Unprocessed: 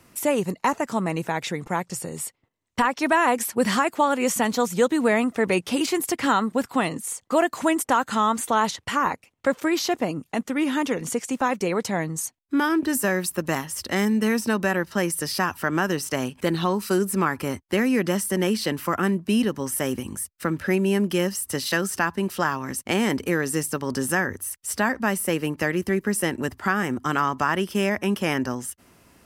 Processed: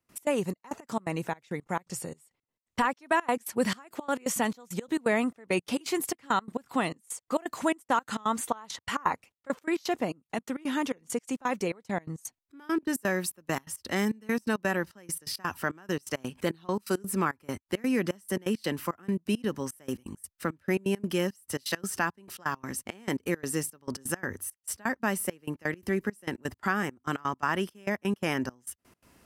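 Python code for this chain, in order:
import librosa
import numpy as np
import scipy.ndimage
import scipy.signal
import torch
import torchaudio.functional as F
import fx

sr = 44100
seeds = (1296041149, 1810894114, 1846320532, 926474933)

y = fx.dynamic_eq(x, sr, hz=1100.0, q=1.3, threshold_db=-34.0, ratio=4.0, max_db=5, at=(8.38, 9.62))
y = fx.step_gate(y, sr, bpm=169, pattern='.x.xxx..x', floor_db=-24.0, edge_ms=4.5)
y = y * 10.0 ** (-5.0 / 20.0)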